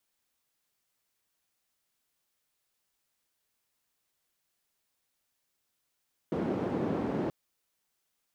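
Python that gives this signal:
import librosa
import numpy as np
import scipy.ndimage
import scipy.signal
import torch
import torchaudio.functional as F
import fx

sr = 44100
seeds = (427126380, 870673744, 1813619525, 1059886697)

y = fx.band_noise(sr, seeds[0], length_s=0.98, low_hz=190.0, high_hz=340.0, level_db=-31.5)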